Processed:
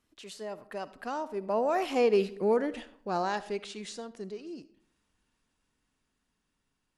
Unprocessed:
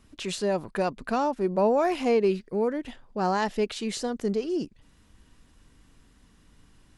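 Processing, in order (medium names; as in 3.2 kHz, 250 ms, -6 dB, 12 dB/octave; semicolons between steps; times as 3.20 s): Doppler pass-by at 2.44 s, 18 m/s, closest 7.7 m; bass shelf 190 Hz -11 dB; algorithmic reverb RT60 0.64 s, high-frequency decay 0.5×, pre-delay 25 ms, DRR 15.5 dB; trim +2.5 dB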